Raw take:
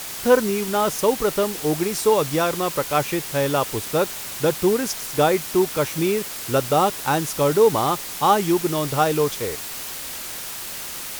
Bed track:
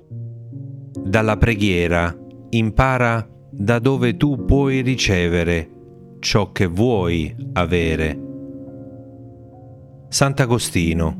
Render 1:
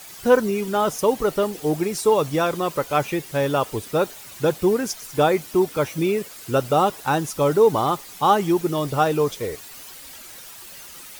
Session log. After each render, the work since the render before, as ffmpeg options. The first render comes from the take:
-af "afftdn=nr=11:nf=-33"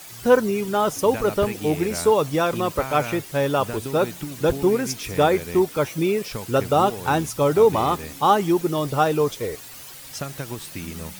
-filter_complex "[1:a]volume=0.158[s0];[0:a][s0]amix=inputs=2:normalize=0"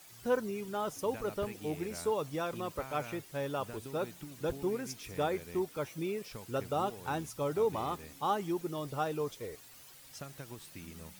-af "volume=0.188"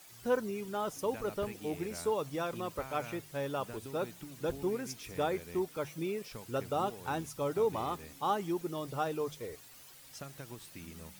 -af "bandreject=f=50:t=h:w=6,bandreject=f=100:t=h:w=6,bandreject=f=150:t=h:w=6"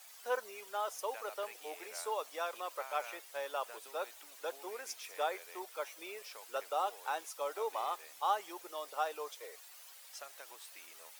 -af "highpass=f=570:w=0.5412,highpass=f=570:w=1.3066"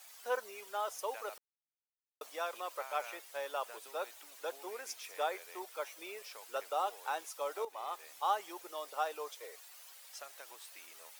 -filter_complex "[0:a]asplit=4[s0][s1][s2][s3];[s0]atrim=end=1.38,asetpts=PTS-STARTPTS,afade=t=out:st=1.376:d=0.004:c=hsin[s4];[s1]atrim=start=1.38:end=2.21,asetpts=PTS-STARTPTS,volume=0[s5];[s2]atrim=start=2.21:end=7.65,asetpts=PTS-STARTPTS,afade=t=in:d=0.004:c=hsin,afade=t=out:st=5.436:d=0.004:c=hsin:silence=0.237137[s6];[s3]atrim=start=7.65,asetpts=PTS-STARTPTS,afade=t=in:d=0.43:silence=0.237137[s7];[s4][s5][s6][s7]concat=n=4:v=0:a=1"

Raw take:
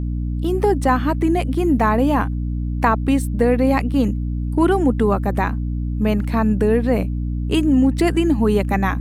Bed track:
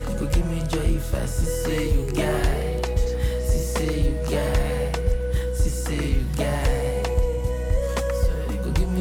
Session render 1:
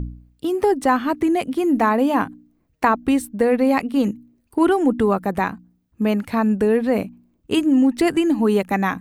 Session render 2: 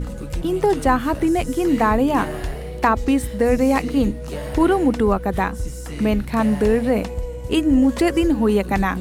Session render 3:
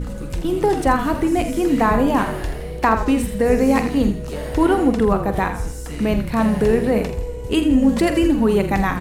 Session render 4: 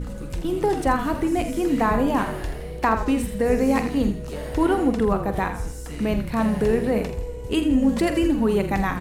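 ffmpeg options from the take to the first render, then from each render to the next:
-af "bandreject=f=60:t=h:w=4,bandreject=f=120:t=h:w=4,bandreject=f=180:t=h:w=4,bandreject=f=240:t=h:w=4,bandreject=f=300:t=h:w=4"
-filter_complex "[1:a]volume=0.531[s0];[0:a][s0]amix=inputs=2:normalize=0"
-filter_complex "[0:a]asplit=2[s0][s1];[s1]adelay=45,volume=0.282[s2];[s0][s2]amix=inputs=2:normalize=0,asplit=5[s3][s4][s5][s6][s7];[s4]adelay=82,afreqshift=-39,volume=0.316[s8];[s5]adelay=164,afreqshift=-78,volume=0.13[s9];[s6]adelay=246,afreqshift=-117,volume=0.0531[s10];[s7]adelay=328,afreqshift=-156,volume=0.0219[s11];[s3][s8][s9][s10][s11]amix=inputs=5:normalize=0"
-af "volume=0.631"

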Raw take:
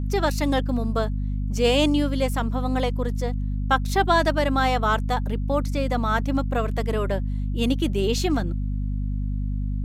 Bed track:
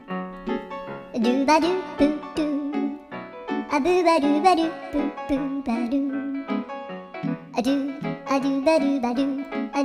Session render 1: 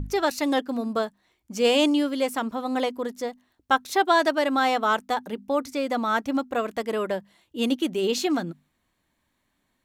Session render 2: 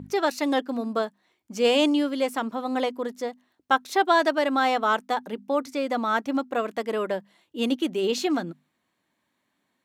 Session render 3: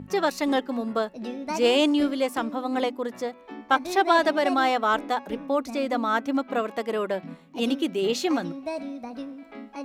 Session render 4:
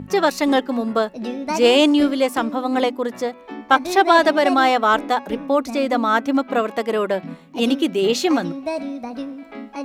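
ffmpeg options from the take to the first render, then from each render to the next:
-af "bandreject=f=50:t=h:w=6,bandreject=f=100:t=h:w=6,bandreject=f=150:t=h:w=6,bandreject=f=200:t=h:w=6,bandreject=f=250:t=h:w=6"
-af "highpass=170,highshelf=f=6400:g=-5.5"
-filter_complex "[1:a]volume=0.224[s0];[0:a][s0]amix=inputs=2:normalize=0"
-af "volume=2.11,alimiter=limit=0.891:level=0:latency=1"

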